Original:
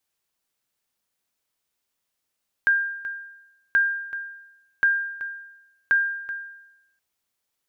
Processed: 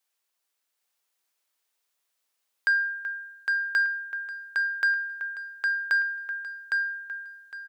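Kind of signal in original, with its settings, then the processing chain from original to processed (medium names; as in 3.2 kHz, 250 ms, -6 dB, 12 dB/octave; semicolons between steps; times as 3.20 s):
sonar ping 1.6 kHz, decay 0.91 s, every 1.08 s, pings 4, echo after 0.38 s, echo -14.5 dB -13 dBFS
Bessel high-pass 510 Hz, order 2; saturation -16.5 dBFS; feedback delay 809 ms, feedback 21%, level -3 dB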